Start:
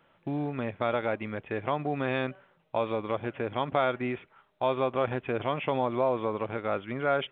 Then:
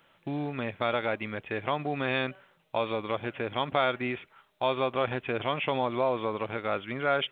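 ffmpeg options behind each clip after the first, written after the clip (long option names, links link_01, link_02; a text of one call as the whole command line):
ffmpeg -i in.wav -af "highshelf=frequency=2400:gain=12,volume=-1.5dB" out.wav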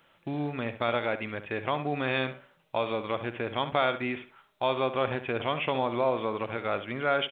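ffmpeg -i in.wav -filter_complex "[0:a]asplit=2[link_01][link_02];[link_02]adelay=68,lowpass=frequency=3300:poles=1,volume=-11.5dB,asplit=2[link_03][link_04];[link_04]adelay=68,lowpass=frequency=3300:poles=1,volume=0.26,asplit=2[link_05][link_06];[link_06]adelay=68,lowpass=frequency=3300:poles=1,volume=0.26[link_07];[link_01][link_03][link_05][link_07]amix=inputs=4:normalize=0" out.wav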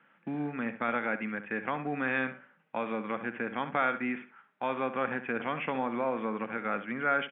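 ffmpeg -i in.wav -af "highpass=frequency=170:width=0.5412,highpass=frequency=170:width=1.3066,equalizer=frequency=210:width_type=q:width=4:gain=6,equalizer=frequency=380:width_type=q:width=4:gain=-7,equalizer=frequency=620:width_type=q:width=4:gain=-9,equalizer=frequency=1000:width_type=q:width=4:gain=-4,equalizer=frequency=1600:width_type=q:width=4:gain=5,lowpass=frequency=2300:width=0.5412,lowpass=frequency=2300:width=1.3066" out.wav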